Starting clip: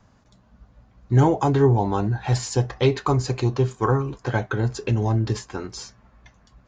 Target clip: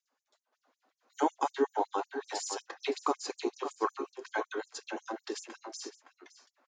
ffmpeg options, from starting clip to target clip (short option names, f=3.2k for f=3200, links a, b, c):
-filter_complex "[0:a]agate=range=-11dB:threshold=-54dB:ratio=16:detection=peak,asplit=2[a][b];[b]adelay=565.6,volume=-8dB,highshelf=f=4k:g=-12.7[c];[a][c]amix=inputs=2:normalize=0,afftfilt=real='re*gte(b*sr/1024,230*pow(5700/230,0.5+0.5*sin(2*PI*5.4*pts/sr)))':imag='im*gte(b*sr/1024,230*pow(5700/230,0.5+0.5*sin(2*PI*5.4*pts/sr)))':win_size=1024:overlap=0.75,volume=-6dB"